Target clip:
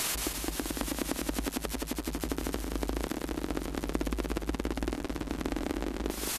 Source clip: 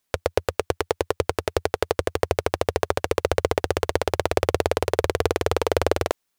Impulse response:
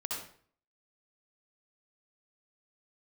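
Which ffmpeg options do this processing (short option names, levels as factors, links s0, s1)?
-af "aeval=exprs='val(0)+0.5*0.0794*sgn(val(0))':c=same,acompressor=threshold=0.0501:ratio=20,asetrate=27781,aresample=44100,atempo=1.5874,aecho=1:1:175|350|525|700|875|1050:0.562|0.287|0.146|0.0746|0.038|0.0194,volume=0.75"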